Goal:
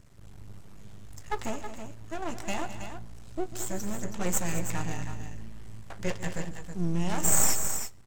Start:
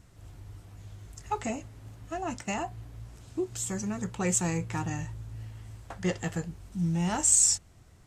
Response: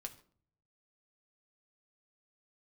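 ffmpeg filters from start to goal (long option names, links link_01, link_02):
-filter_complex "[0:a]aeval=exprs='max(val(0),0)':channel_layout=same,aecho=1:1:144|212|323:0.158|0.237|0.355,asplit=2[link_01][link_02];[1:a]atrim=start_sample=2205[link_03];[link_02][link_03]afir=irnorm=-1:irlink=0,volume=-6dB[link_04];[link_01][link_04]amix=inputs=2:normalize=0"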